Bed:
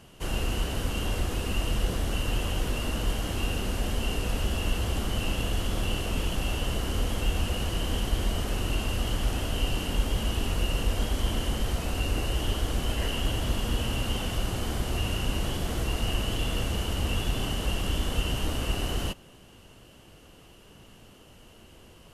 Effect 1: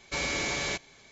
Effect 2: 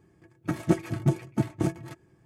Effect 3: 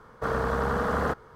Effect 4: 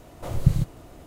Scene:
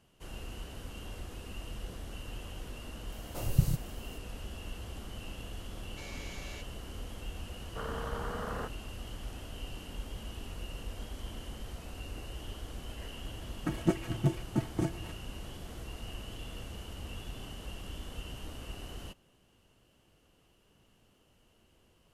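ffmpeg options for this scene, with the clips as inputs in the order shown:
-filter_complex "[0:a]volume=-14.5dB[a];[4:a]aexciter=amount=1.6:drive=8.8:freq=4.5k,atrim=end=1.06,asetpts=PTS-STARTPTS,volume=-7dB,afade=t=in:d=0.004:c=hsin,afade=t=out:st=1.056:d=0.004:c=hsin,adelay=3120[b];[1:a]atrim=end=1.11,asetpts=PTS-STARTPTS,volume=-17.5dB,afade=t=in:d=0.004:c=hsin,afade=t=out:st=1.106:d=0.004:c=hsin,adelay=257985S[c];[3:a]atrim=end=1.35,asetpts=PTS-STARTPTS,volume=-12dB,afade=t=in:d=0.004:c=hsin,afade=t=out:st=1.346:d=0.004:c=hsin,adelay=332514S[d];[2:a]atrim=end=2.25,asetpts=PTS-STARTPTS,volume=-5dB,afade=t=in:d=0.004:c=hsin,afade=t=out:st=2.246:d=0.004:c=hsin,adelay=13180[e];[a][b][c][d][e]amix=inputs=5:normalize=0"

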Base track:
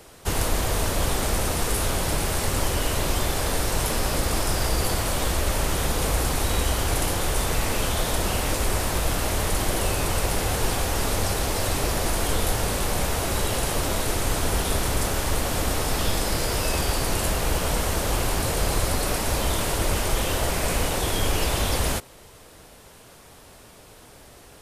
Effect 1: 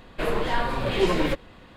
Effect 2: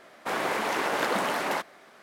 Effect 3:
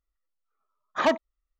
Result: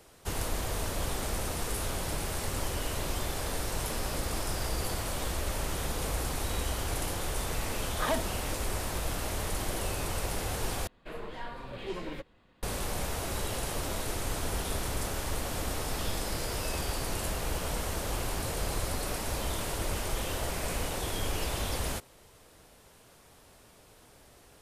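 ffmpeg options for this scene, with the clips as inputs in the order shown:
-filter_complex "[0:a]volume=-9dB[a];[3:a]acompressor=threshold=-25dB:ratio=6:attack=3.2:release=140:knee=1:detection=peak[b];[a]asplit=2[c][d];[c]atrim=end=10.874[e];[1:a]atrim=end=1.76,asetpts=PTS-STARTPTS,volume=-15.5dB[f];[d]atrim=start=12.626[g];[b]atrim=end=1.59,asetpts=PTS-STARTPTS,volume=-2dB,afade=t=in:d=0.004:c=hsin,afade=t=out:st=1.586:d=0.004:c=hsin,adelay=7040[h];[e][f]acrossfade=d=0.004:c1=hsin:c2=hsin[i];[i][g]acrossfade=d=0.004:c1=hsin:c2=hsin[j];[j][h]amix=inputs=2:normalize=0"

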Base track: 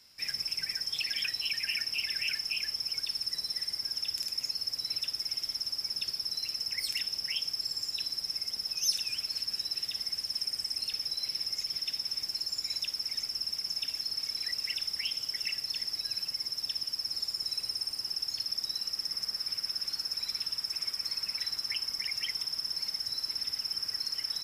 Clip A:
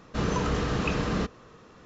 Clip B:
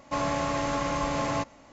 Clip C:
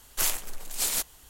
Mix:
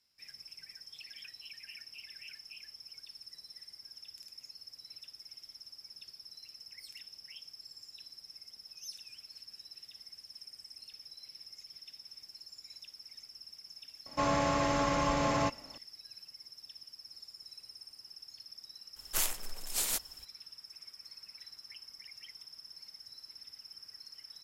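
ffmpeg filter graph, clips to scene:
-filter_complex "[0:a]volume=-16.5dB[a];[2:a]atrim=end=1.72,asetpts=PTS-STARTPTS,volume=-1.5dB,afade=t=in:d=0.004:c=hsin,afade=t=out:st=1.716:d=0.004:c=hsin,adelay=14060[b];[3:a]atrim=end=1.29,asetpts=PTS-STARTPTS,volume=-5dB,afade=t=in:d=0.004:c=hsin,afade=t=out:st=1.286:d=0.004:c=hsin,adelay=18960[c];[a][b][c]amix=inputs=3:normalize=0"

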